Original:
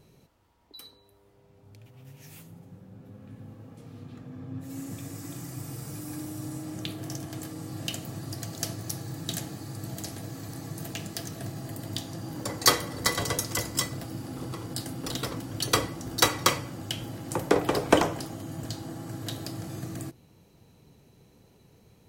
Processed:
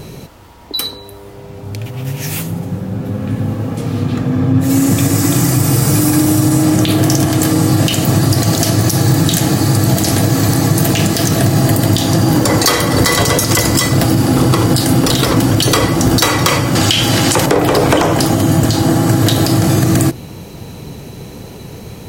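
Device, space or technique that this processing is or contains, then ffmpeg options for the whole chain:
loud club master: -filter_complex "[0:a]asettb=1/sr,asplit=3[link_01][link_02][link_03];[link_01]atrim=end=16.754[link_04];[link_02]atrim=start=16.75:end=17.46,asetpts=PTS-STARTPTS,afade=type=in:duration=0.004:curve=qsin,afade=type=out:start_time=0.706:duration=0.004:curve=qsin,equalizer=frequency=4100:width=0.34:gain=12[link_05];[link_03]atrim=start=17.456[link_06];[link_04][link_05]acrossfade=duration=0.004:curve1=hsin:curve2=qsin[link_07];[link_07][link_06]acrossfade=duration=0.004:curve1=qsin:curve2=hsin,acompressor=threshold=-34dB:ratio=2,asoftclip=type=hard:threshold=-18.5dB,alimiter=level_in=28.5dB:limit=-1dB:release=50:level=0:latency=1,volume=-1dB"

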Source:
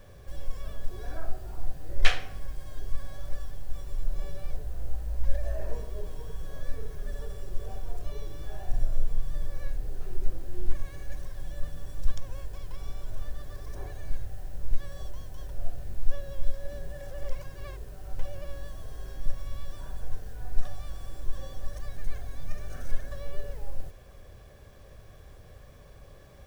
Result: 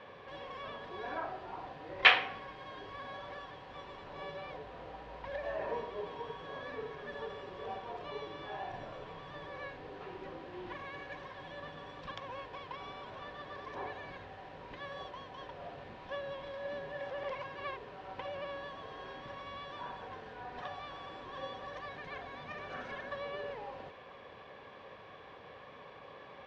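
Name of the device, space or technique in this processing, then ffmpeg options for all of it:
phone earpiece: -af "highpass=350,equalizer=frequency=360:width_type=q:width=4:gain=-6,equalizer=frequency=620:width_type=q:width=4:gain=-7,equalizer=frequency=960:width_type=q:width=4:gain=6,equalizer=frequency=1500:width_type=q:width=4:gain=-4,lowpass=frequency=3300:width=0.5412,lowpass=frequency=3300:width=1.3066,volume=8.5dB"

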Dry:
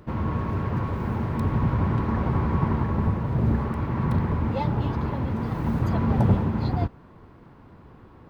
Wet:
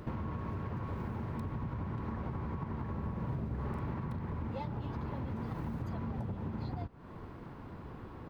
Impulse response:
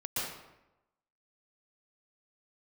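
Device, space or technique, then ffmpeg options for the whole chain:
serial compression, leveller first: -filter_complex "[0:a]acompressor=threshold=-24dB:ratio=2.5,acompressor=threshold=-38dB:ratio=6,asplit=3[link_01][link_02][link_03];[link_01]afade=type=out:start_time=2.98:duration=0.02[link_04];[link_02]asplit=2[link_05][link_06];[link_06]adelay=46,volume=-4.5dB[link_07];[link_05][link_07]amix=inputs=2:normalize=0,afade=type=in:start_time=2.98:duration=0.02,afade=type=out:start_time=3.93:duration=0.02[link_08];[link_03]afade=type=in:start_time=3.93:duration=0.02[link_09];[link_04][link_08][link_09]amix=inputs=3:normalize=0,volume=2dB"

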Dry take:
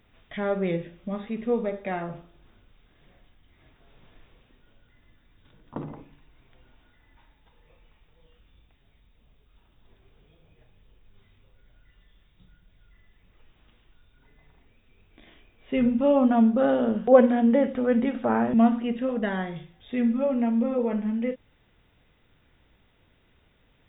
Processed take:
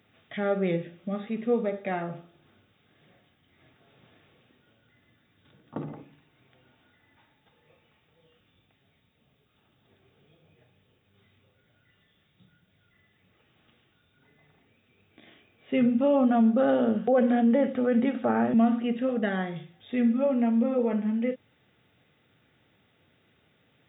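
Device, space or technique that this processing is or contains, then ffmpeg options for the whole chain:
PA system with an anti-feedback notch: -af "highpass=frequency=100:width=0.5412,highpass=frequency=100:width=1.3066,asuperstop=centerf=990:order=4:qfactor=7.5,alimiter=limit=-15dB:level=0:latency=1:release=33"

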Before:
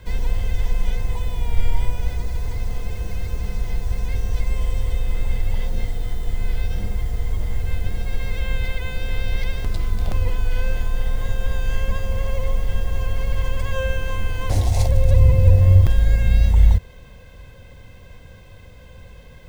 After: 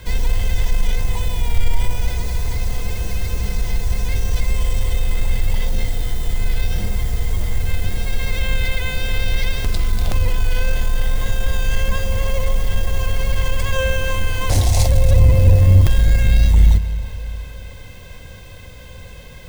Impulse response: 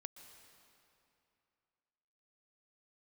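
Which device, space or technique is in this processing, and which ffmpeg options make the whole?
saturated reverb return: -filter_complex "[0:a]highshelf=frequency=2600:gain=8,asplit=2[link_01][link_02];[1:a]atrim=start_sample=2205[link_03];[link_02][link_03]afir=irnorm=-1:irlink=0,asoftclip=type=tanh:threshold=-20dB,volume=7dB[link_04];[link_01][link_04]amix=inputs=2:normalize=0,volume=-2dB"

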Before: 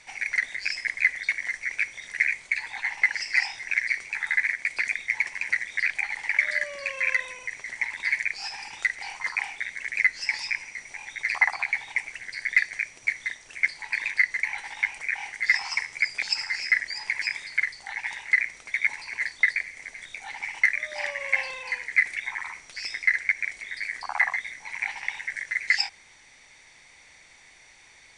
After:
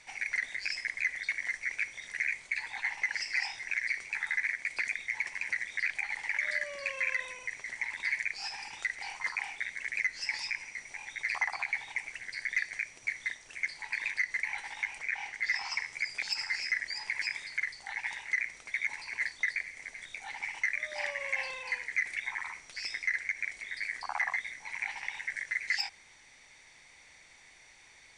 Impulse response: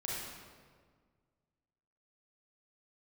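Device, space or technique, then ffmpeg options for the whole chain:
soft clipper into limiter: -filter_complex "[0:a]asettb=1/sr,asplit=3[link_01][link_02][link_03];[link_01]atrim=end=15.004[link_04];[link_02]atrim=start=15:end=15.86,asetpts=PTS-STARTPTS,afade=type=in:duration=0.004:curve=qsin,afade=type=out:start_time=0.856:duration=0.004:curve=qsin,lowpass=7100[link_05];[link_03]atrim=start=15.856[link_06];[link_04][link_05]acrossfade=duration=0.004:curve1=hsin:curve2=qsin[link_07];[link_07][link_06]acrossfade=duration=0.004:curve1=qsin:curve2=hsin,asoftclip=type=tanh:threshold=-10dB,alimiter=limit=-17dB:level=0:latency=1:release=65,volume=-4dB"

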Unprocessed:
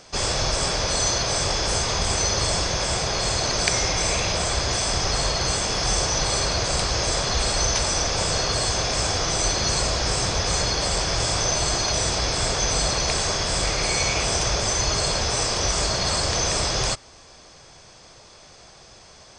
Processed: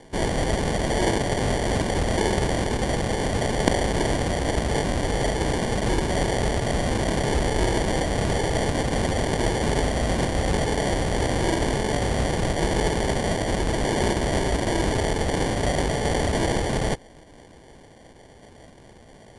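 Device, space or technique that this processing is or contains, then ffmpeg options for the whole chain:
crushed at another speed: -af "asetrate=88200,aresample=44100,acrusher=samples=17:mix=1:aa=0.000001,asetrate=22050,aresample=44100"

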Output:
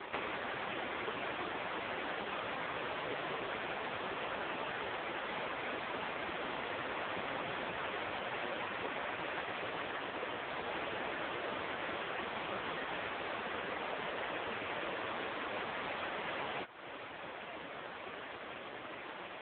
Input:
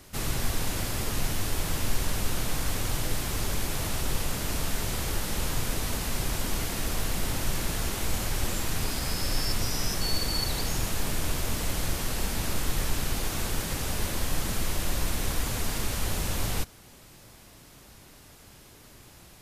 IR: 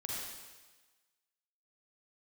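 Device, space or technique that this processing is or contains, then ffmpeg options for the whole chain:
voicemail: -filter_complex "[0:a]asplit=3[link_01][link_02][link_03];[link_01]afade=type=out:start_time=6.84:duration=0.02[link_04];[link_02]lowshelf=frequency=100:gain=5,afade=type=in:start_time=6.84:duration=0.02,afade=type=out:start_time=7.88:duration=0.02[link_05];[link_03]afade=type=in:start_time=7.88:duration=0.02[link_06];[link_04][link_05][link_06]amix=inputs=3:normalize=0,highpass=420,lowpass=2700,acompressor=threshold=-50dB:ratio=8,volume=18dB" -ar 8000 -c:a libopencore_amrnb -b:a 5150

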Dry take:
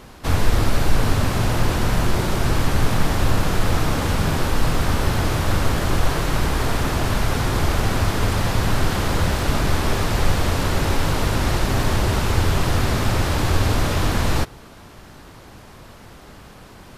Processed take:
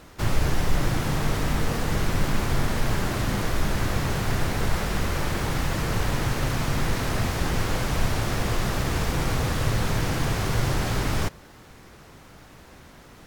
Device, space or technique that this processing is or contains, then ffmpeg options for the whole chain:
nightcore: -af "asetrate=56448,aresample=44100,volume=-5.5dB"

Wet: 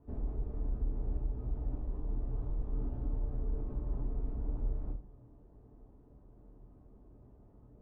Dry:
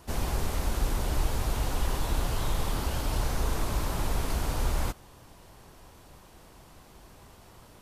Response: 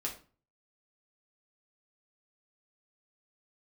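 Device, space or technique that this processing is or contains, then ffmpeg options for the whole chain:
television next door: -filter_complex "[0:a]acompressor=threshold=-29dB:ratio=6,lowpass=420[link_01];[1:a]atrim=start_sample=2205[link_02];[link_01][link_02]afir=irnorm=-1:irlink=0,volume=-5dB"

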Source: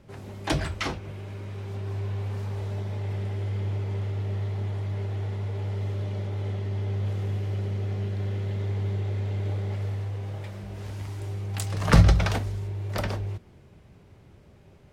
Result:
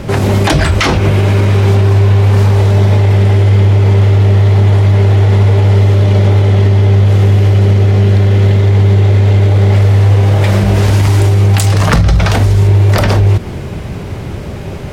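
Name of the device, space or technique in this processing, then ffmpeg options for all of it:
loud club master: -af "acompressor=threshold=-33dB:ratio=3,asoftclip=type=hard:threshold=-23.5dB,alimiter=level_in=32dB:limit=-1dB:release=50:level=0:latency=1,volume=-1dB"

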